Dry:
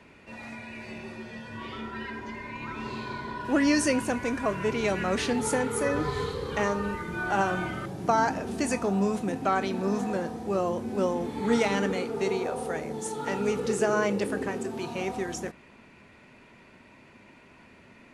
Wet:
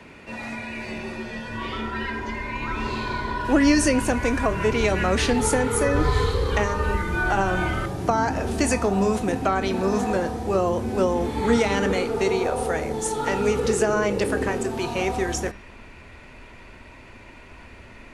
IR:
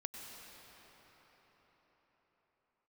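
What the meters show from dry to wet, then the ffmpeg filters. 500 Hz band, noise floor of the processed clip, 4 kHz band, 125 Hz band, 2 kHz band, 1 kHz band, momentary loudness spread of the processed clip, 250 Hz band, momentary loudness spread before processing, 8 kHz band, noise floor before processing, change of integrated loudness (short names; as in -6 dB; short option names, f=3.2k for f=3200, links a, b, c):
+5.5 dB, -45 dBFS, +6.0 dB, +8.5 dB, +5.5 dB, +4.5 dB, 10 LU, +4.5 dB, 14 LU, +6.5 dB, -54 dBFS, +5.0 dB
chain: -filter_complex "[0:a]acrossover=split=350[a][b];[b]acompressor=threshold=-28dB:ratio=6[c];[a][c]amix=inputs=2:normalize=0,asubboost=boost=9:cutoff=55,bandreject=f=201.1:t=h:w=4,bandreject=f=402.2:t=h:w=4,bandreject=f=603.3:t=h:w=4,bandreject=f=804.4:t=h:w=4,bandreject=f=1.0055k:t=h:w=4,bandreject=f=1.2066k:t=h:w=4,bandreject=f=1.4077k:t=h:w=4,bandreject=f=1.6088k:t=h:w=4,bandreject=f=1.8099k:t=h:w=4,bandreject=f=2.011k:t=h:w=4,bandreject=f=2.2121k:t=h:w=4,bandreject=f=2.4132k:t=h:w=4,bandreject=f=2.6143k:t=h:w=4,bandreject=f=2.8154k:t=h:w=4,bandreject=f=3.0165k:t=h:w=4,bandreject=f=3.2176k:t=h:w=4,bandreject=f=3.4187k:t=h:w=4,bandreject=f=3.6198k:t=h:w=4,bandreject=f=3.8209k:t=h:w=4,bandreject=f=4.022k:t=h:w=4,bandreject=f=4.2231k:t=h:w=4,bandreject=f=4.4242k:t=h:w=4,bandreject=f=4.6253k:t=h:w=4,bandreject=f=4.8264k:t=h:w=4,bandreject=f=5.0275k:t=h:w=4,bandreject=f=5.2286k:t=h:w=4,bandreject=f=5.4297k:t=h:w=4,bandreject=f=5.6308k:t=h:w=4,volume=8.5dB"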